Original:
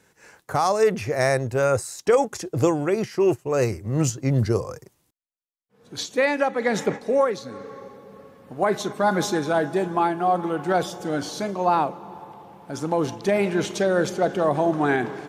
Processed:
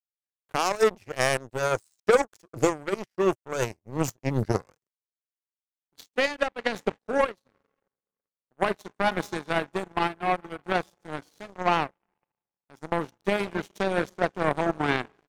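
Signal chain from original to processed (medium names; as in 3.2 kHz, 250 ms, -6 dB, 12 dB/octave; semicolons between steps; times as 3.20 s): saturation -10 dBFS, distortion -24 dB; power-law waveshaper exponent 3; trim +4.5 dB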